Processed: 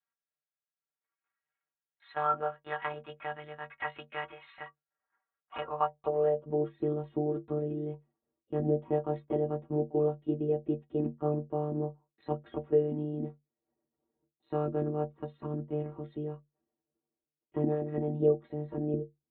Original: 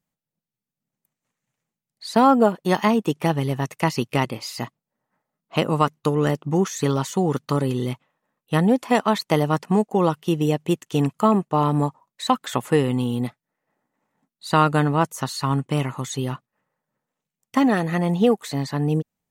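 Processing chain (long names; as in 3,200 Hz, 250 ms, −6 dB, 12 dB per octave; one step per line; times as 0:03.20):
in parallel at +2.5 dB: downward compressor, threshold −25 dBFS, peak gain reduction 13.5 dB
on the sum: one-pitch LPC vocoder at 8 kHz 150 Hz
stiff-string resonator 69 Hz, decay 0.27 s, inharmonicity 0.03
band-pass filter sweep 1,500 Hz → 330 Hz, 0:05.41–0:06.77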